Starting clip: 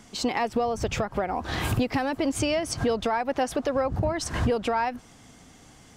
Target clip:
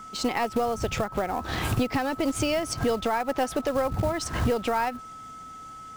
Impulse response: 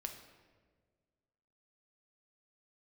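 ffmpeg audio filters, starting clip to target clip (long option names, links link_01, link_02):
-af "aeval=exprs='0.178*(cos(1*acos(clip(val(0)/0.178,-1,1)))-cos(1*PI/2))+0.00501*(cos(3*acos(clip(val(0)/0.178,-1,1)))-cos(3*PI/2))+0.00501*(cos(6*acos(clip(val(0)/0.178,-1,1)))-cos(6*PI/2))':channel_layout=same,acrusher=bits=5:mode=log:mix=0:aa=0.000001,aeval=exprs='val(0)+0.01*sin(2*PI*1300*n/s)':channel_layout=same"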